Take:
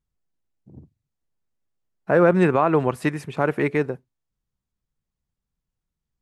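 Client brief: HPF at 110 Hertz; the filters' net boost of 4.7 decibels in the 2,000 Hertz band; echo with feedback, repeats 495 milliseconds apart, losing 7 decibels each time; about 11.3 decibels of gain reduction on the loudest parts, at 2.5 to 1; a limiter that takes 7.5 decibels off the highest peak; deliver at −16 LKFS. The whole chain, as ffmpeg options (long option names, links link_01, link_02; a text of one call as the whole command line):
ffmpeg -i in.wav -af "highpass=110,equalizer=frequency=2000:width_type=o:gain=6,acompressor=threshold=-29dB:ratio=2.5,alimiter=limit=-19.5dB:level=0:latency=1,aecho=1:1:495|990|1485|1980|2475:0.447|0.201|0.0905|0.0407|0.0183,volume=16.5dB" out.wav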